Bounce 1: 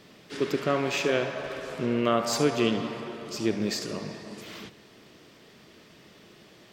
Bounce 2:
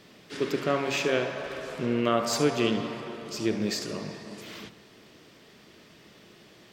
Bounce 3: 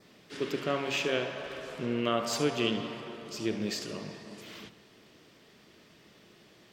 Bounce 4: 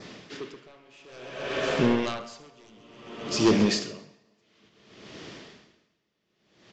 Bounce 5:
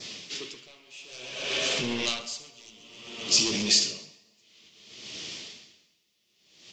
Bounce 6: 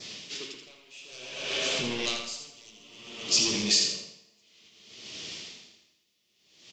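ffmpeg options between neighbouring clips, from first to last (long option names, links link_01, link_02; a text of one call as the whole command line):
ffmpeg -i in.wav -af "bandreject=frequency=45.53:width_type=h:width=4,bandreject=frequency=91.06:width_type=h:width=4,bandreject=frequency=136.59:width_type=h:width=4,bandreject=frequency=182.12:width_type=h:width=4,bandreject=frequency=227.65:width_type=h:width=4,bandreject=frequency=273.18:width_type=h:width=4,bandreject=frequency=318.71:width_type=h:width=4,bandreject=frequency=364.24:width_type=h:width=4,bandreject=frequency=409.77:width_type=h:width=4,bandreject=frequency=455.3:width_type=h:width=4,bandreject=frequency=500.83:width_type=h:width=4,bandreject=frequency=546.36:width_type=h:width=4,bandreject=frequency=591.89:width_type=h:width=4,bandreject=frequency=637.42:width_type=h:width=4,bandreject=frequency=682.95:width_type=h:width=4,bandreject=frequency=728.48:width_type=h:width=4,bandreject=frequency=774.01:width_type=h:width=4,bandreject=frequency=819.54:width_type=h:width=4,bandreject=frequency=865.07:width_type=h:width=4,bandreject=frequency=910.6:width_type=h:width=4,bandreject=frequency=956.13:width_type=h:width=4,bandreject=frequency=1001.66:width_type=h:width=4,bandreject=frequency=1047.19:width_type=h:width=4,bandreject=frequency=1092.72:width_type=h:width=4,bandreject=frequency=1138.25:width_type=h:width=4,bandreject=frequency=1183.78:width_type=h:width=4,bandreject=frequency=1229.31:width_type=h:width=4,bandreject=frequency=1274.84:width_type=h:width=4,bandreject=frequency=1320.37:width_type=h:width=4,bandreject=frequency=1365.9:width_type=h:width=4" out.wav
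ffmpeg -i in.wav -af "adynamicequalizer=threshold=0.00398:dfrequency=3000:dqfactor=3.4:tfrequency=3000:tqfactor=3.4:attack=5:release=100:ratio=0.375:range=3:mode=boostabove:tftype=bell,volume=-4.5dB" out.wav
ffmpeg -i in.wav -af "aresample=16000,aeval=exprs='0.211*sin(PI/2*3.55*val(0)/0.211)':channel_layout=same,aresample=44100,aecho=1:1:133|266|399|532|665|798:0.251|0.143|0.0816|0.0465|0.0265|0.0151,aeval=exprs='val(0)*pow(10,-36*(0.5-0.5*cos(2*PI*0.57*n/s))/20)':channel_layout=same" out.wav
ffmpeg -i in.wav -af "flanger=delay=8.1:depth=4.8:regen=-40:speed=1.6:shape=sinusoidal,alimiter=limit=-24dB:level=0:latency=1:release=18,aexciter=amount=6.2:drive=3.9:freq=2300,volume=-1dB" out.wav
ffmpeg -i in.wav -af "aecho=1:1:82|164|246|328:0.447|0.152|0.0516|0.0176,volume=-2dB" out.wav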